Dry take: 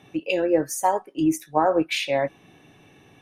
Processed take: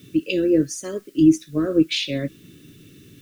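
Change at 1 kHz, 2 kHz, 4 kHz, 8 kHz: -21.0 dB, -2.5 dB, +4.0 dB, -0.5 dB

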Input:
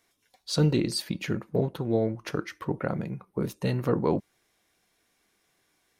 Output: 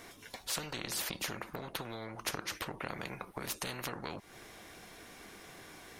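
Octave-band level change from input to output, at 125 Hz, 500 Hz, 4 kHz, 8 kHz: -19.0 dB, -16.0 dB, -3.5 dB, +1.5 dB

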